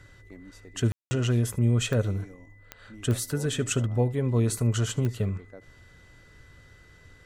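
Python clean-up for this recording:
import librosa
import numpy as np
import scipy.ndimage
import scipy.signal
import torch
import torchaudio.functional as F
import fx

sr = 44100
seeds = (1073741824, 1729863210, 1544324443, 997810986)

y = fx.fix_declick_ar(x, sr, threshold=10.0)
y = fx.notch(y, sr, hz=2000.0, q=30.0)
y = fx.fix_ambience(y, sr, seeds[0], print_start_s=6.55, print_end_s=7.05, start_s=0.92, end_s=1.11)
y = fx.fix_echo_inverse(y, sr, delay_ms=75, level_db=-21.5)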